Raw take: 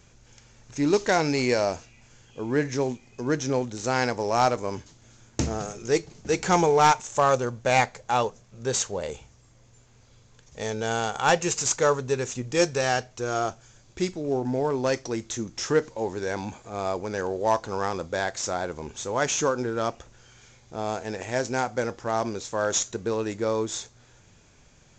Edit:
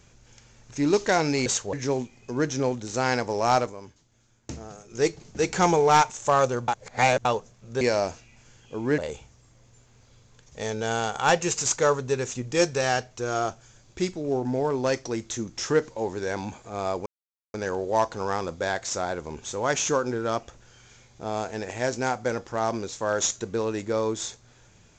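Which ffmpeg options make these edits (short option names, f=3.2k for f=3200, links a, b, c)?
-filter_complex "[0:a]asplit=10[a][b][c][d][e][f][g][h][i][j];[a]atrim=end=1.462[k];[b]atrim=start=8.708:end=8.982[l];[c]atrim=start=2.628:end=4.65,asetpts=PTS-STARTPTS,afade=t=out:st=1.852:d=0.17:c=qsin:silence=0.281838[m];[d]atrim=start=4.65:end=5.78,asetpts=PTS-STARTPTS,volume=-11dB[n];[e]atrim=start=5.78:end=7.582,asetpts=PTS-STARTPTS,afade=t=in:d=0.17:c=qsin:silence=0.281838[o];[f]atrim=start=7.578:end=8.152,asetpts=PTS-STARTPTS,areverse[p];[g]atrim=start=8.148:end=8.712[q];[h]atrim=start=1.458:end=2.632[r];[i]atrim=start=8.978:end=17.06,asetpts=PTS-STARTPTS,afade=t=out:st=8.078:d=0.004:c=hsin,apad=pad_dur=0.48[s];[j]atrim=start=17.06,asetpts=PTS-STARTPTS,afade=t=in:d=0.004:c=hsin[t];[k][l]acrossfade=d=0.004:c1=hsin:c2=hsin[u];[m][n][o]concat=n=3:v=0:a=1[v];[u][v]acrossfade=d=0.004:c1=hsin:c2=hsin[w];[w][p]acrossfade=d=0.004:c1=hsin:c2=hsin[x];[x][q]acrossfade=d=0.004:c1=hsin:c2=hsin[y];[y][r]acrossfade=d=0.004:c1=hsin:c2=hsin[z];[s][t]concat=n=2:v=0:a=1[aa];[z][aa]acrossfade=d=0.004:c1=hsin:c2=hsin"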